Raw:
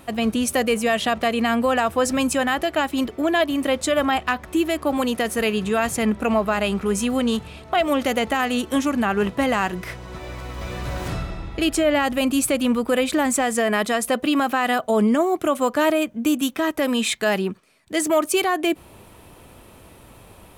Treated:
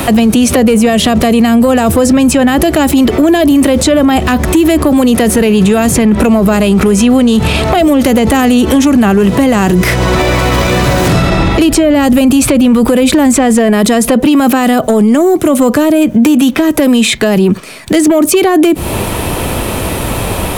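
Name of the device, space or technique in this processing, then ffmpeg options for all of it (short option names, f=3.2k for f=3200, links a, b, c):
mastering chain: -filter_complex "[0:a]equalizer=f=1.2k:t=o:w=0.77:g=-1.5,acrossover=split=110|460|5200[a][b][c][d];[a]acompressor=threshold=-43dB:ratio=4[e];[b]acompressor=threshold=-22dB:ratio=4[f];[c]acompressor=threshold=-35dB:ratio=4[g];[d]acompressor=threshold=-43dB:ratio=4[h];[e][f][g][h]amix=inputs=4:normalize=0,acompressor=threshold=-26dB:ratio=2.5,asoftclip=type=tanh:threshold=-19dB,asoftclip=type=hard:threshold=-22.5dB,alimiter=level_in=32.5dB:limit=-1dB:release=50:level=0:latency=1,volume=-1dB"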